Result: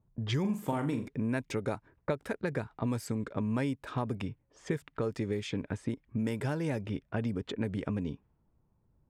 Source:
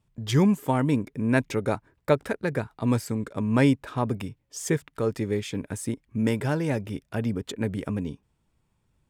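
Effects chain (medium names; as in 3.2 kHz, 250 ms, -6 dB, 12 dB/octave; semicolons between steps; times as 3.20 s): level-controlled noise filter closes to 880 Hz, open at -21.5 dBFS; compression 6:1, threshold -29 dBFS, peak gain reduction 13.5 dB; 0.40–1.08 s: flutter echo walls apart 7.2 m, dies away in 0.34 s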